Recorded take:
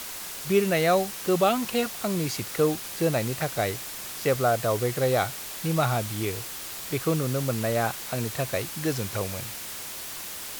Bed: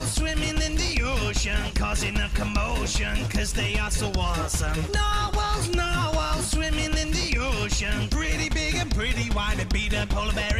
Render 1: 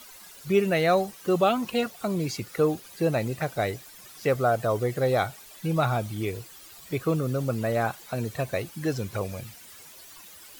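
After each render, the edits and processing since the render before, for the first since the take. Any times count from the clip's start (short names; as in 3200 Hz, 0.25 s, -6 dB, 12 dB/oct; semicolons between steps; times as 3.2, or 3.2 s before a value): denoiser 14 dB, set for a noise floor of -37 dBFS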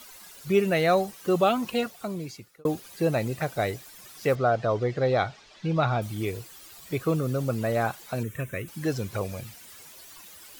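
1.7–2.65 fade out; 4.35–6.02 LPF 5400 Hz 24 dB/oct; 8.23–8.68 fixed phaser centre 1900 Hz, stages 4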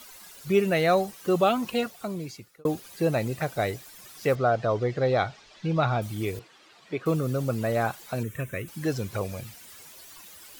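6.39–7.06 BPF 210–3400 Hz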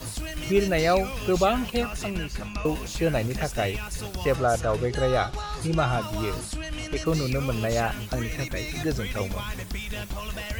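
add bed -8 dB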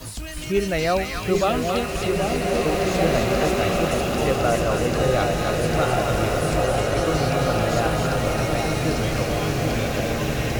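split-band echo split 1000 Hz, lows 0.781 s, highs 0.266 s, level -3.5 dB; bloom reverb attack 2.35 s, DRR -0.5 dB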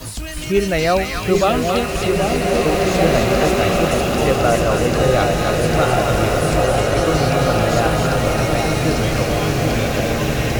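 gain +5 dB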